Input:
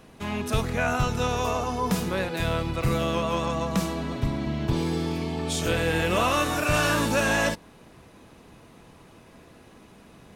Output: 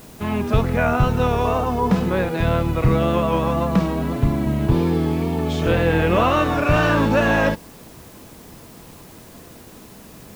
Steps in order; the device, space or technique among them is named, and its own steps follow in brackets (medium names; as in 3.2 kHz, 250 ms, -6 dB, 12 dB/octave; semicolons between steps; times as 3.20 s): cassette deck with a dirty head (tape spacing loss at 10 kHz 28 dB; wow and flutter; white noise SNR 28 dB); trim +8.5 dB